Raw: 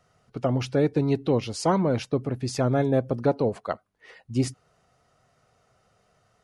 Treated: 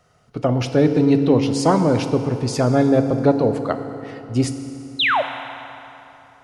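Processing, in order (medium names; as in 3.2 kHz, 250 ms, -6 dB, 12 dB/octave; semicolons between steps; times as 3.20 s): painted sound fall, 4.99–5.22 s, 520–4200 Hz -23 dBFS; FDN reverb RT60 3.2 s, high-frequency decay 0.7×, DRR 7.5 dB; trim +5.5 dB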